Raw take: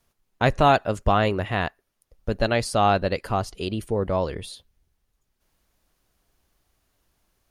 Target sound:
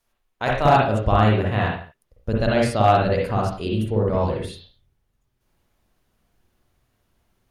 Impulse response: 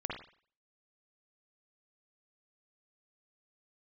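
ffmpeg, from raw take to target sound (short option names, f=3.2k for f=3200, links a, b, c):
-filter_complex "[1:a]atrim=start_sample=2205,afade=t=out:st=0.31:d=0.01,atrim=end_sample=14112[a];[0:a][a]afir=irnorm=-1:irlink=0,volume=7.5dB,asoftclip=hard,volume=-7.5dB,asetnsamples=n=441:p=0,asendcmd='0.65 equalizer g 5',equalizer=f=130:t=o:w=2.8:g=-8,volume=-1dB"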